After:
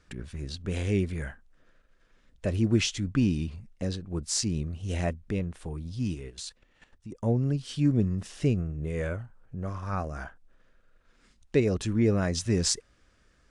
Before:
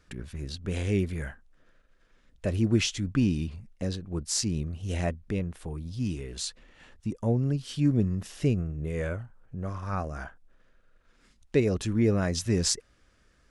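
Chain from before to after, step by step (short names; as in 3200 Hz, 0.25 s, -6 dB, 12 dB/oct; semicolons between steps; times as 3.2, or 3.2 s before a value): 6.14–7.23 level quantiser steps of 13 dB; AAC 96 kbps 22050 Hz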